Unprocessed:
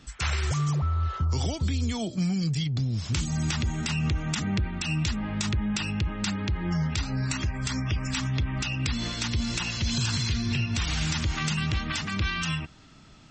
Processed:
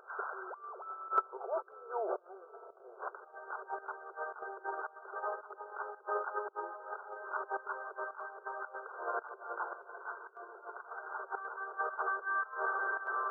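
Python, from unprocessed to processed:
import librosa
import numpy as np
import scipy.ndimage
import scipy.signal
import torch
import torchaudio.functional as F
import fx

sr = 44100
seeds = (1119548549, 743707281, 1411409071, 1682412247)

y = fx.echo_diffused(x, sr, ms=671, feedback_pct=45, wet_db=-13.0)
y = fx.over_compress(y, sr, threshold_db=-36.0, ratio=-1.0)
y = fx.brickwall_bandpass(y, sr, low_hz=370.0, high_hz=1600.0)
y = fx.volume_shaper(y, sr, bpm=111, per_beat=1, depth_db=-14, release_ms=94.0, shape='slow start')
y = F.gain(torch.from_numpy(y), 7.5).numpy()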